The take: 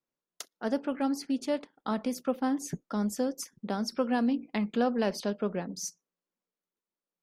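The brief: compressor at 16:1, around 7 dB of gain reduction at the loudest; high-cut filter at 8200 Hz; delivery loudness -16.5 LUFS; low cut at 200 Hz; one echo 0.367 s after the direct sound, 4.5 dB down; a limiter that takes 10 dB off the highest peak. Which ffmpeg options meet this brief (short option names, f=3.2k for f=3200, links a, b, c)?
-af "highpass=200,lowpass=8.2k,acompressor=threshold=-30dB:ratio=16,alimiter=level_in=4dB:limit=-24dB:level=0:latency=1,volume=-4dB,aecho=1:1:367:0.596,volume=21.5dB"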